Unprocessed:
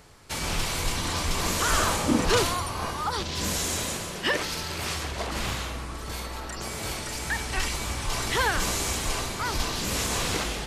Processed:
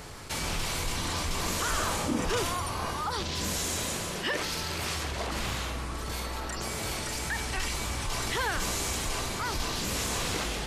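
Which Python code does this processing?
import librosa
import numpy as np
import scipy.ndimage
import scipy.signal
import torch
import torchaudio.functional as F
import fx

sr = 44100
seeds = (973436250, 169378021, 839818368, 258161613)

y = fx.notch(x, sr, hz=4200.0, q=9.0, at=(2.14, 2.65))
y = fx.env_flatten(y, sr, amount_pct=50)
y = y * 10.0 ** (-7.5 / 20.0)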